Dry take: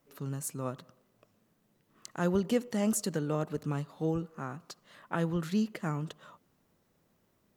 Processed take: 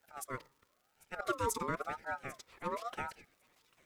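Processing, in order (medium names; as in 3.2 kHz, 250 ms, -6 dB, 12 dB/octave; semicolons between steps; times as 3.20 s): high-pass 150 Hz 24 dB/octave; bass shelf 310 Hz -3.5 dB; hum notches 60/120/180/240 Hz; slow attack 140 ms; time stretch by phase-locked vocoder 0.51×; frequency shift +26 Hz; crackle 390 per s -60 dBFS; on a send: feedback echo behind a high-pass 795 ms, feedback 61%, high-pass 1.7 kHz, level -19 dB; on the sum: ring modulator with a swept carrier 900 Hz, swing 25%, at 0.97 Hz; trim +1 dB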